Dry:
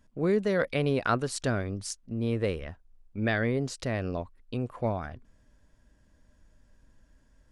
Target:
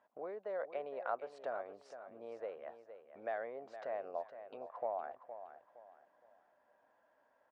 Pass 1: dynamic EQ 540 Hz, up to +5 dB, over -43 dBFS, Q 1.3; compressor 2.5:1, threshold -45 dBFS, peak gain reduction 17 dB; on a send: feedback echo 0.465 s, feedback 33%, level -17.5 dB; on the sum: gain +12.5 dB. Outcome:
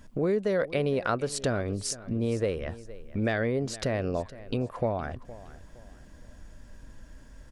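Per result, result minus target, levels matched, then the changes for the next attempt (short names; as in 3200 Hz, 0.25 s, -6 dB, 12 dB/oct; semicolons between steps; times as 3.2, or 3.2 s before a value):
1000 Hz band -7.5 dB; echo-to-direct -6.5 dB
add after compressor: ladder band-pass 850 Hz, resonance 50%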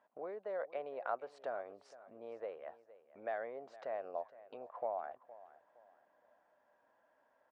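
echo-to-direct -6.5 dB
change: feedback echo 0.465 s, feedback 33%, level -11 dB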